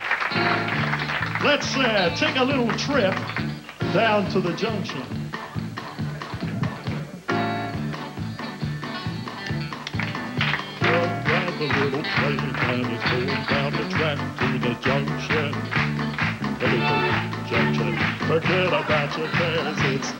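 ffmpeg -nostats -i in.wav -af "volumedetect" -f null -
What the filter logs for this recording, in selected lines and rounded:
mean_volume: -23.9 dB
max_volume: -6.8 dB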